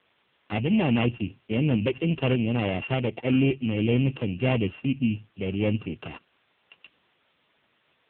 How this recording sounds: a buzz of ramps at a fixed pitch in blocks of 16 samples; tremolo saw up 1.7 Hz, depth 30%; a quantiser's noise floor 10-bit, dither triangular; AMR-NB

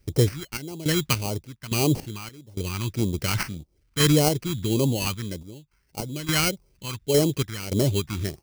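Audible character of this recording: a quantiser's noise floor 12-bit, dither none; random-step tremolo, depth 95%; aliases and images of a low sample rate 3600 Hz, jitter 0%; phasing stages 2, 1.7 Hz, lowest notch 500–1600 Hz

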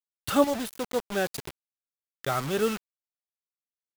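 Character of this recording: chopped level 0.68 Hz, depth 65%, duty 30%; a quantiser's noise floor 6-bit, dither none

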